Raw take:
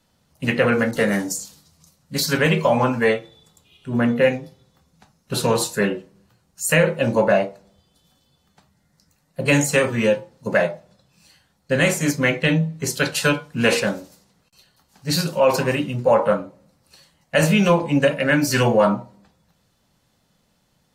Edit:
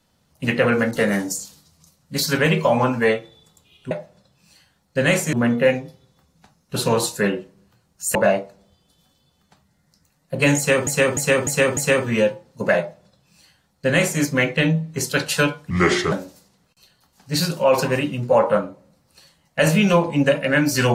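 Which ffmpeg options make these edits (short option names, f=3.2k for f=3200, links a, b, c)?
-filter_complex "[0:a]asplit=10[a][b][c][d][e][f][g][h][i][j];[a]atrim=end=3.912[k];[b]atrim=start=10.648:end=12.072[l];[c]atrim=start=3.908:end=6.732[m];[d]atrim=start=7.208:end=9.932[n];[e]atrim=start=9.628:end=9.932[o];[f]atrim=start=9.628:end=9.932[p];[g]atrim=start=9.628:end=9.932[q];[h]atrim=start=9.628:end=13.564[r];[i]atrim=start=13.56:end=13.88,asetpts=PTS-STARTPTS,asetrate=33516,aresample=44100,atrim=end_sample=18568,asetpts=PTS-STARTPTS[s];[j]atrim=start=13.876[t];[k][l]acrossfade=d=0.004:c1=hsin:c2=hsin[u];[u][m]acrossfade=d=0.004:c1=hsin:c2=hsin[v];[v][n]acrossfade=d=0.004:c1=hsin:c2=hsin[w];[w][o]acrossfade=d=0.004:c1=hsin:c2=hsin[x];[x][p]acrossfade=d=0.004:c1=hsin:c2=hsin[y];[y][q]acrossfade=d=0.004:c1=hsin:c2=hsin[z];[z][r]acrossfade=d=0.004:c1=hsin:c2=hsin[aa];[aa][s]acrossfade=d=0.004:c1=hsin:c2=hsin[ab];[ab][t]acrossfade=d=0.004:c1=hsin:c2=hsin"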